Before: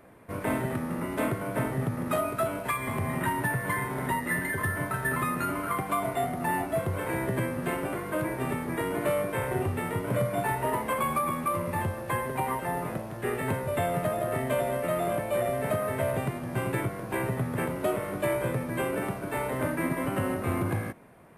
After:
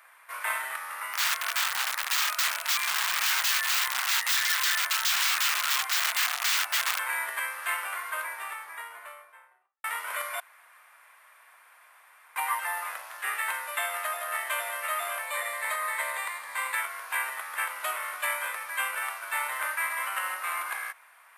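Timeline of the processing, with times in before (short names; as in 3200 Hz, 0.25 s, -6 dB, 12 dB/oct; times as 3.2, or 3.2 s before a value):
1.13–6.99 wrapped overs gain 26.5 dB
7.78–9.84 studio fade out
10.4–12.36 room tone
15.27–16.75 ripple EQ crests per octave 1, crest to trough 8 dB
whole clip: HPF 1100 Hz 24 dB/oct; gain +7 dB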